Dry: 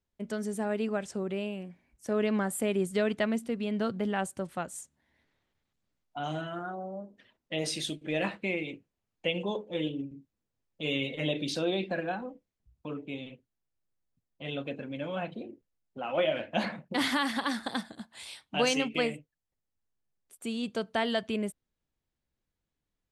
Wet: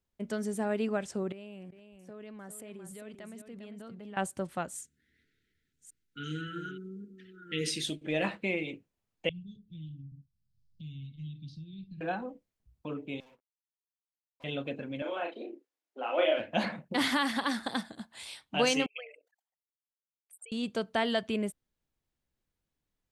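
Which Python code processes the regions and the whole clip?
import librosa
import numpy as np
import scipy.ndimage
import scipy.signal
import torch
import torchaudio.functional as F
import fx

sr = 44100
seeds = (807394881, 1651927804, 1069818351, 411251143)

y = fx.chain(x, sr, fx.level_steps(step_db=23),
    fx.echo_single(ms=401, db=-9.0), at=(1.32, 4.17))
y = fx.chain(y, sr, fx.reverse_delay(ms=568, wet_db=-10.5),
    fx.brickwall_bandstop(low_hz=500.0, high_hz=1300.0), at=(4.77, 7.86))
y = fx.chain(y, sr, fx.ellip_bandstop(low_hz=150.0, high_hz=5000.0, order=3, stop_db=70),
    fx.air_absorb(metres=360.0),
    fx.band_squash(depth_pct=70), at=(9.29, 12.01))
y = fx.chain(y, sr, fx.bandpass_q(hz=960.0, q=11.0),
    fx.leveller(passes=5), at=(13.2, 14.44))
y = fx.chain(y, sr, fx.steep_highpass(hz=290.0, slope=36),
    fx.high_shelf(hz=10000.0, db=-11.5),
    fx.doubler(ms=35.0, db=-3.5), at=(15.02, 16.39))
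y = fx.chain(y, sr, fx.envelope_sharpen(power=3.0),
    fx.steep_highpass(hz=670.0, slope=48),
    fx.sustainer(db_per_s=100.0), at=(18.86, 20.52))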